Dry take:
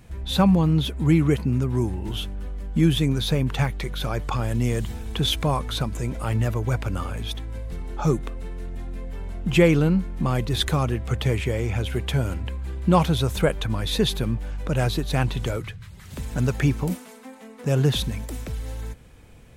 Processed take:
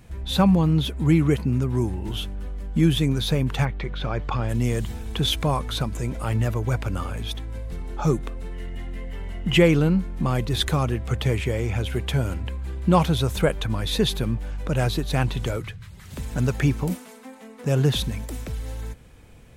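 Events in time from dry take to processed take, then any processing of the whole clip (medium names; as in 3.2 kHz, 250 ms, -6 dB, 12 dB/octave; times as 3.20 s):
3.64–4.48 s: low-pass 2.7 kHz -> 4.5 kHz
8.52–9.57 s: small resonant body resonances 2/2.9 kHz, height 17 dB -> 15 dB, ringing for 25 ms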